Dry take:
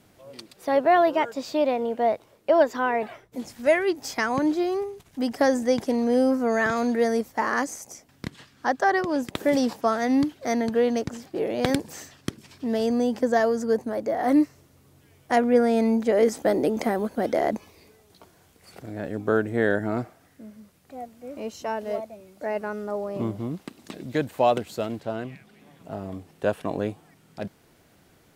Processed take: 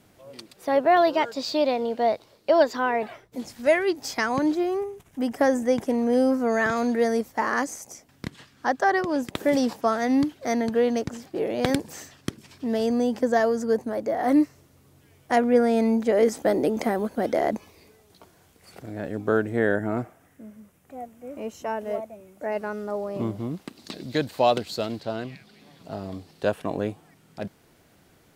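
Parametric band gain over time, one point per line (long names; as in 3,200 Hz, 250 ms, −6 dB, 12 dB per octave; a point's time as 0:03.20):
parametric band 4,400 Hz 0.66 octaves
−0.5 dB
from 0:00.97 +10.5 dB
from 0:02.75 +2.5 dB
from 0:04.55 −8.5 dB
from 0:06.13 −0.5 dB
from 0:19.59 −9.5 dB
from 0:22.52 +1.5 dB
from 0:23.76 +11.5 dB
from 0:26.49 0 dB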